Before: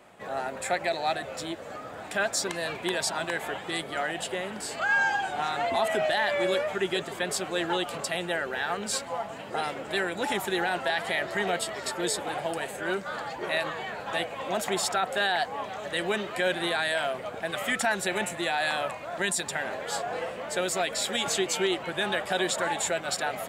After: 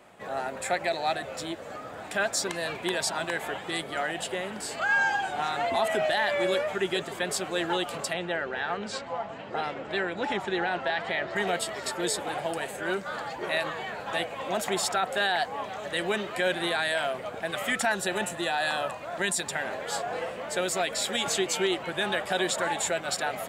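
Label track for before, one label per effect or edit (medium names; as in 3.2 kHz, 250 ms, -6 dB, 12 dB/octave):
8.130000	11.360000	distance through air 130 m
17.920000	19.020000	band-stop 2.2 kHz, Q 5.8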